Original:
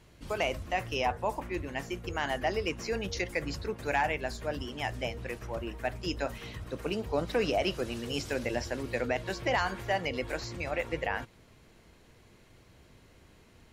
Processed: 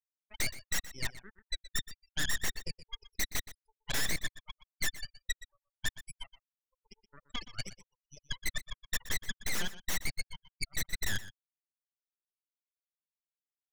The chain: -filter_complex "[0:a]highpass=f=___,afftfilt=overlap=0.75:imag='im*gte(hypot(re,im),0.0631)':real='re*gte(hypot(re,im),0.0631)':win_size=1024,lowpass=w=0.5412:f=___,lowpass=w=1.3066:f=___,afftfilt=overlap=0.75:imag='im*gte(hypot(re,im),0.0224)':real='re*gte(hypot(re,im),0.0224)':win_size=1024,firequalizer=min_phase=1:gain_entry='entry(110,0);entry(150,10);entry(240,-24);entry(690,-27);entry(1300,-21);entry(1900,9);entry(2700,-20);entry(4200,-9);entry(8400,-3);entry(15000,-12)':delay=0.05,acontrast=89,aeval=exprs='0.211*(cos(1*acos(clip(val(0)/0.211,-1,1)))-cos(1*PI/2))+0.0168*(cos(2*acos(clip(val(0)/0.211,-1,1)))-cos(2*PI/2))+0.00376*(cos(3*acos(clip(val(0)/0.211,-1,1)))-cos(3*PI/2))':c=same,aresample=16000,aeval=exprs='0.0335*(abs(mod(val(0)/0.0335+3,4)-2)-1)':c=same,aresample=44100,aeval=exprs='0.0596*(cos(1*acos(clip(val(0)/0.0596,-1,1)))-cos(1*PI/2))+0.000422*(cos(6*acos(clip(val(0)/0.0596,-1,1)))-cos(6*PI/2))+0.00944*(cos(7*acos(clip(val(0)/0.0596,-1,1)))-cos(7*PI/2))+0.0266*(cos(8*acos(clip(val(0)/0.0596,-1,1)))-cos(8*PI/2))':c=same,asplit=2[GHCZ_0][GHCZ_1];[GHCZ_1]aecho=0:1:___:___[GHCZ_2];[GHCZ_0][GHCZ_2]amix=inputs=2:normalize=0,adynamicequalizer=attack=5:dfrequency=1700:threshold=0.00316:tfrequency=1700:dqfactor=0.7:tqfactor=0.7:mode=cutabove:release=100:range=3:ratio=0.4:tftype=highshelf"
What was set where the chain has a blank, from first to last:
670, 5300, 5300, 122, 0.178